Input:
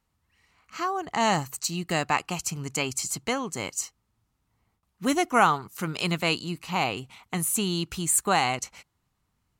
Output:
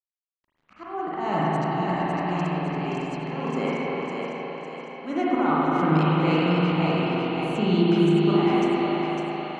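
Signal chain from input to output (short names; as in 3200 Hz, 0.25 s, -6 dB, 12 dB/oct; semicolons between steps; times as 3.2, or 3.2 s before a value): elliptic high-pass 160 Hz, stop band 40 dB; auto swell 0.382 s; in parallel at +2 dB: limiter -26.5 dBFS, peak gain reduction 11 dB; on the sum: sample gate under -49 dBFS; tape spacing loss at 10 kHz 31 dB; on a send: split-band echo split 320 Hz, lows 0.159 s, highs 0.554 s, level -4.5 dB; on the sum: spring tank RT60 3.8 s, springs 38/51 ms, chirp 55 ms, DRR -8 dB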